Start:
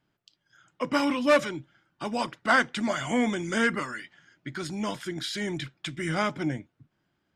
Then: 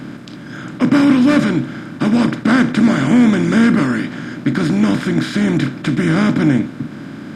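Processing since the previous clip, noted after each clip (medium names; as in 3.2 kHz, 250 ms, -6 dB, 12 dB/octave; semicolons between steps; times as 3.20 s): spectral levelling over time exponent 0.4; resonant low shelf 400 Hz +11.5 dB, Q 1.5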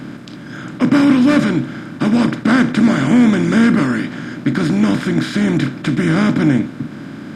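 no audible change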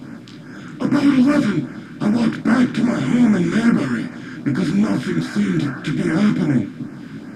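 spectral replace 5.14–5.83 s, 600–1800 Hz; LFO notch sine 2.5 Hz 600–3700 Hz; detune thickener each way 29 cents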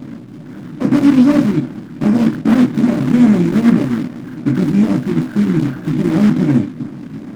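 median filter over 41 samples; trim +5 dB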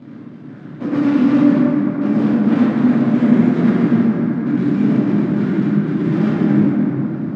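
band-pass 100–4000 Hz; plate-style reverb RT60 4.2 s, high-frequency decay 0.35×, DRR -7 dB; trim -9 dB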